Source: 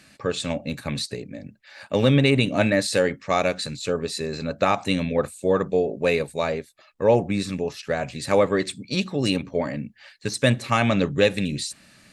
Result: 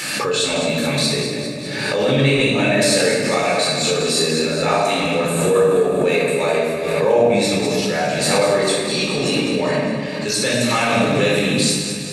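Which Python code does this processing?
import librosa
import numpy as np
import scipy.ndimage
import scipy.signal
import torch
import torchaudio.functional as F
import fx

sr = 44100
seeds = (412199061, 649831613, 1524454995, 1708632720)

p1 = scipy.signal.sosfilt(scipy.signal.butter(2, 130.0, 'highpass', fs=sr, output='sos'), x)
p2 = fx.low_shelf(p1, sr, hz=190.0, db=-11.5)
p3 = fx.over_compress(p2, sr, threshold_db=-31.0, ratio=-1.0)
p4 = p2 + F.gain(torch.from_numpy(p3), 1.0).numpy()
p5 = fx.high_shelf(p4, sr, hz=5800.0, db=7.0)
p6 = p5 + fx.echo_alternate(p5, sr, ms=101, hz=1400.0, feedback_pct=76, wet_db=-6.5, dry=0)
p7 = fx.room_shoebox(p6, sr, seeds[0], volume_m3=950.0, walls='mixed', distance_m=4.2)
p8 = fx.pre_swell(p7, sr, db_per_s=29.0)
y = F.gain(torch.from_numpy(p8), -7.0).numpy()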